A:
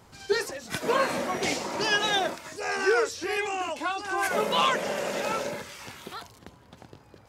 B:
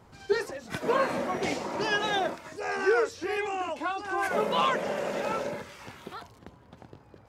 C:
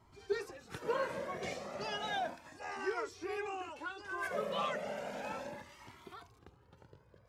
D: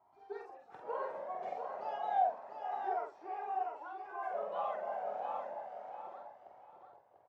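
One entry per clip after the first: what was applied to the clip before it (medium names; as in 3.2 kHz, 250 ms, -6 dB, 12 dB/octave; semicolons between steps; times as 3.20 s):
treble shelf 2.7 kHz -10 dB
pre-echo 135 ms -23.5 dB; Shepard-style flanger rising 0.34 Hz; trim -5.5 dB
band-pass filter 760 Hz, Q 5.6; doubling 47 ms -4 dB; feedback delay 693 ms, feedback 26%, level -7 dB; trim +7 dB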